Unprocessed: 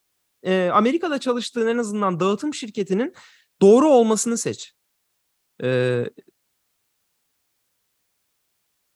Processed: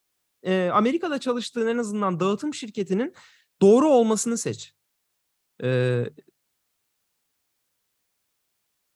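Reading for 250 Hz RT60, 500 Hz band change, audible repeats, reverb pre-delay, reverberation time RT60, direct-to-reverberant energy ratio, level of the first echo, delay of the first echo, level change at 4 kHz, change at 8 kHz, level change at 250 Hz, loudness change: no reverb audible, −3.5 dB, no echo audible, no reverb audible, no reverb audible, no reverb audible, no echo audible, no echo audible, −3.5 dB, −3.5 dB, −2.5 dB, −3.0 dB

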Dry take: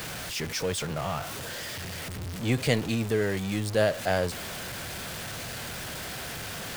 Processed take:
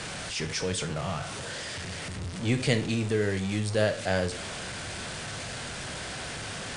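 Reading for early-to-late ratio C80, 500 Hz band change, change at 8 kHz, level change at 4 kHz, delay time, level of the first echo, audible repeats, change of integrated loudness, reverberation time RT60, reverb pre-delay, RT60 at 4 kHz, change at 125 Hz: 17.5 dB, −1.5 dB, 0.0 dB, +0.5 dB, no echo audible, no echo audible, no echo audible, −0.5 dB, 0.45 s, 15 ms, 0.40 s, +0.5 dB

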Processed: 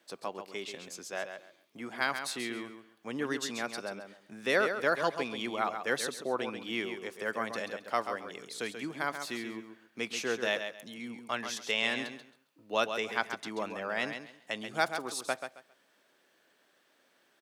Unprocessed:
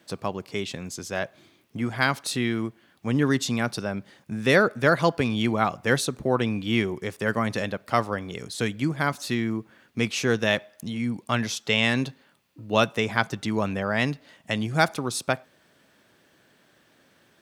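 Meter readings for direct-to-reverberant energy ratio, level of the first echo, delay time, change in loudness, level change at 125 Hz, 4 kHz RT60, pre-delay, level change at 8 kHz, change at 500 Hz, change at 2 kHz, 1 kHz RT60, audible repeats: no reverb audible, −8.0 dB, 135 ms, −8.5 dB, −23.0 dB, no reverb audible, no reverb audible, −7.0 dB, −8.0 dB, −7.0 dB, no reverb audible, 3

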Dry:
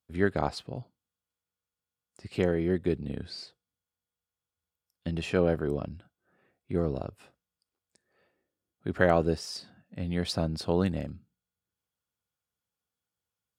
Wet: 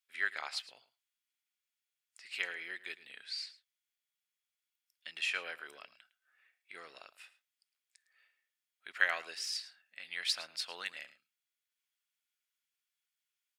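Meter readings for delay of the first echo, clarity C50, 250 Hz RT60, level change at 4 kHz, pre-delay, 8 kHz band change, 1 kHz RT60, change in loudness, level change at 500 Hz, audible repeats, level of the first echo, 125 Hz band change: 108 ms, no reverb audible, no reverb audible, +2.0 dB, no reverb audible, +0.5 dB, no reverb audible, −7.5 dB, −24.0 dB, 1, −17.0 dB, below −40 dB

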